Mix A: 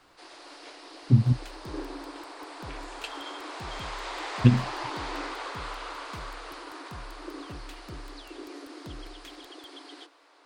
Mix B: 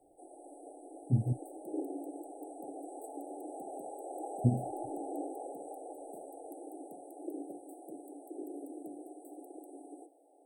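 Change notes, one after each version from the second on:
speech -9.5 dB; second sound: add high-pass 300 Hz 24 dB/octave; master: add brick-wall FIR band-stop 850–7800 Hz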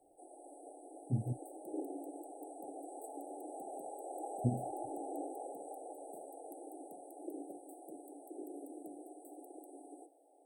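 master: add bass shelf 380 Hz -7 dB

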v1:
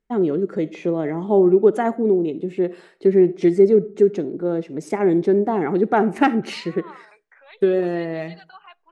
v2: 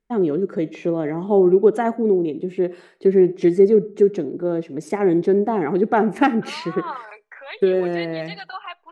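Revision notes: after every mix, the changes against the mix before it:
second voice +11.5 dB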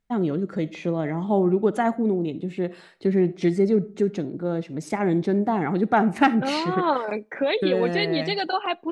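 second voice: remove ladder high-pass 860 Hz, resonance 30%; master: add fifteen-band graphic EQ 100 Hz +12 dB, 400 Hz -9 dB, 4 kHz +4 dB

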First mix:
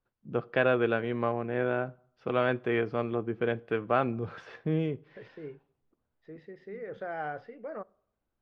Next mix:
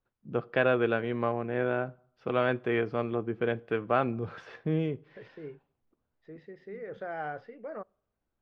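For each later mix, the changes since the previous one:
second voice: send -7.0 dB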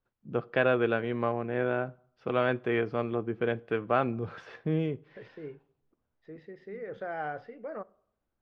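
second voice: send +10.5 dB

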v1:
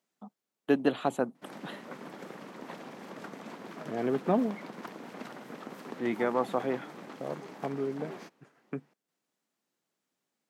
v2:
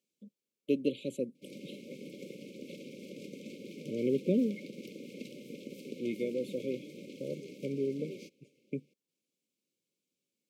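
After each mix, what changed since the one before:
first voice -4.0 dB; master: add brick-wall FIR band-stop 590–2100 Hz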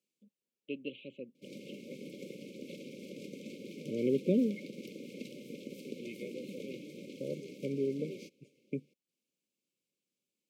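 first voice: add four-pole ladder low-pass 3.1 kHz, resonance 65%

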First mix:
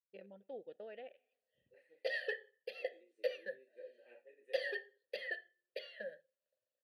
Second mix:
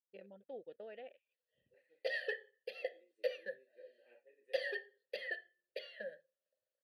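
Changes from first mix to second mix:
second voice -4.0 dB; reverb: off

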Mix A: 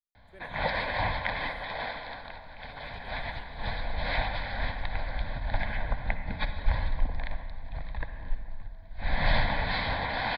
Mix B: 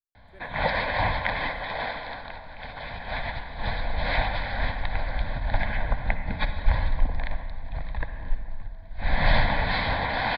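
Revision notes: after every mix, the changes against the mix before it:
background +4.5 dB; master: add treble shelf 5.7 kHz -6 dB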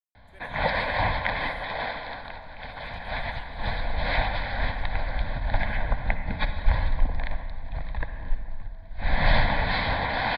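speech: add tilt EQ +3.5 dB/octave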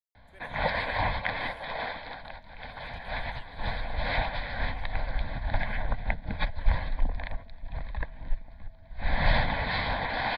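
reverb: off

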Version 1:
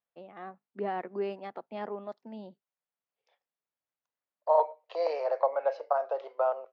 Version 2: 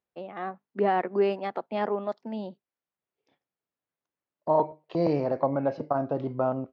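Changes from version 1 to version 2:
first voice +9.0 dB; second voice: remove steep high-pass 480 Hz 48 dB/octave

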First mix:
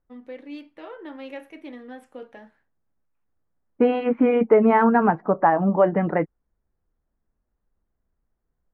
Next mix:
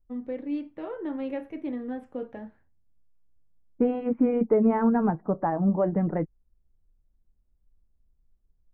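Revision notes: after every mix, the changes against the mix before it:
second voice -11.0 dB; master: add tilt EQ -4 dB/octave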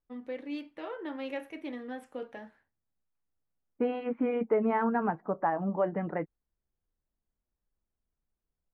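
master: add tilt EQ +4 dB/octave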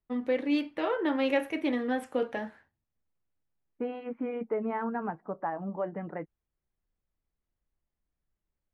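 first voice +10.0 dB; second voice -4.5 dB

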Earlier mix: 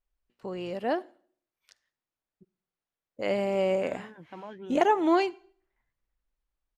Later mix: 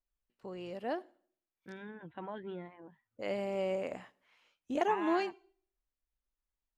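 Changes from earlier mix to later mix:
first voice -8.0 dB; second voice: entry -2.15 s

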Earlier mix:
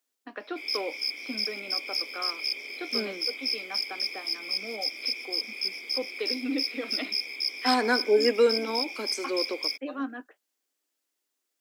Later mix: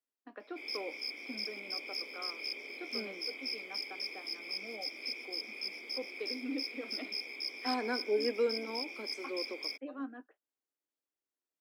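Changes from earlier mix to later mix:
first voice -7.5 dB; second voice -9.0 dB; master: add treble shelf 2 kHz -11 dB

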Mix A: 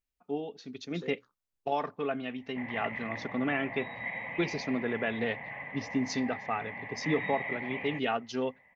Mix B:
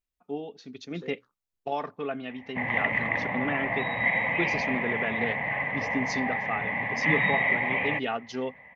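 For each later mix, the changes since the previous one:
second voice: add treble shelf 4.5 kHz -8.5 dB; background +12.0 dB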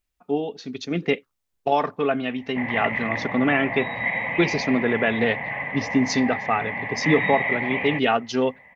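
first voice +10.0 dB; second voice -8.0 dB

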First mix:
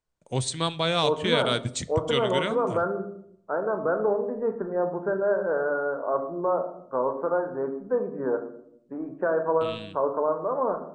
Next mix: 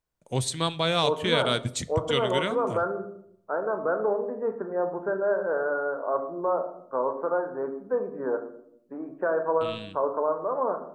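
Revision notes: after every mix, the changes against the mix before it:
first voice: remove brick-wall FIR low-pass 9.4 kHz; second voice: add high-pass 290 Hz 6 dB/octave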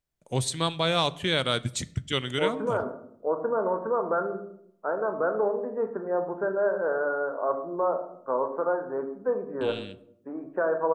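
second voice: entry +1.35 s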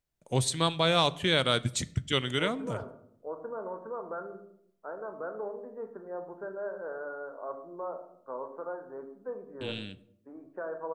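second voice -11.5 dB

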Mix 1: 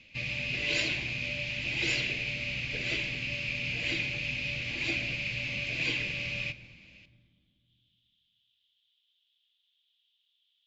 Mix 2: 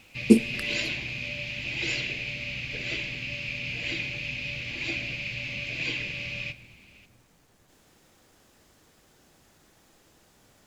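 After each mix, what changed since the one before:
speech: remove Butterworth band-pass 3.3 kHz, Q 4.7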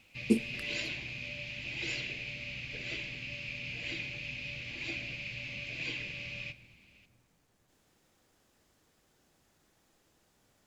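speech -10.0 dB; background -7.0 dB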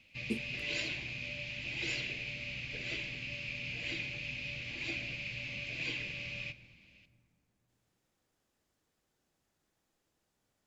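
speech -10.5 dB

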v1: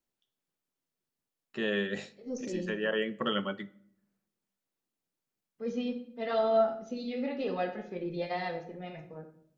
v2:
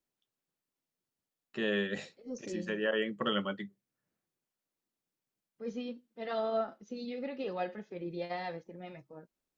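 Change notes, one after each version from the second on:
reverb: off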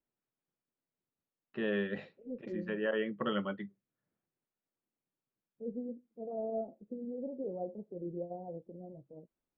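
second voice: add steep low-pass 650 Hz 36 dB/octave; master: add distance through air 420 m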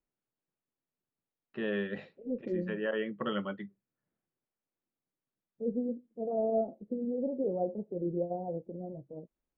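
second voice +7.0 dB

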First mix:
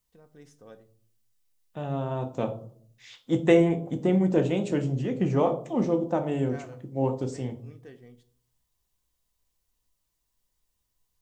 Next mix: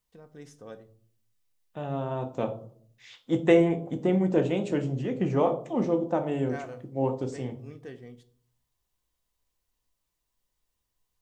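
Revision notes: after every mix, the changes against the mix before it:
first voice +5.0 dB; second voice: add tone controls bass -3 dB, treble -4 dB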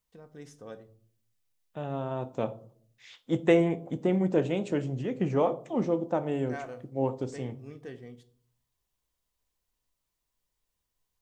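second voice: send -6.5 dB

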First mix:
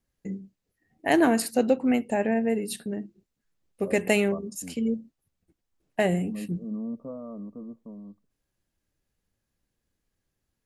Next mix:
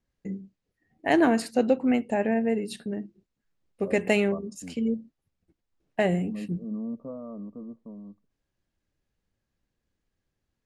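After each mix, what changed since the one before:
master: add distance through air 67 m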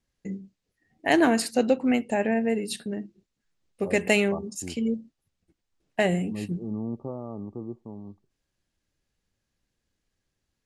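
second voice: remove static phaser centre 550 Hz, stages 8; master: add treble shelf 2.6 kHz +8.5 dB

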